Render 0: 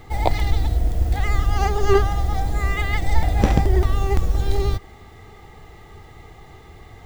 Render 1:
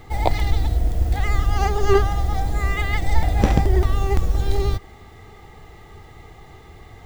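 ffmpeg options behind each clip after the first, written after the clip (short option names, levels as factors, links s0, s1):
-af anull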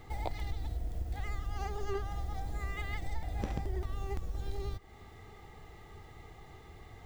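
-af "acompressor=threshold=0.0398:ratio=2.5,volume=0.376"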